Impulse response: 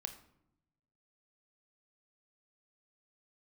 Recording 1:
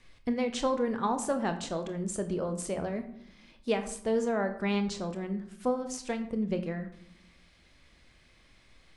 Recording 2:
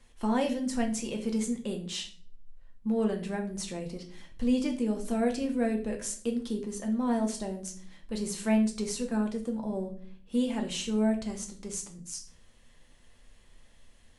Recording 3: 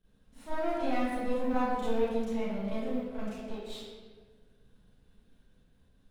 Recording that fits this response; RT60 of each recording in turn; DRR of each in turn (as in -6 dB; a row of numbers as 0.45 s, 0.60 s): 1; 0.80 s, 0.50 s, 1.6 s; 7.5 dB, 2.0 dB, -14.0 dB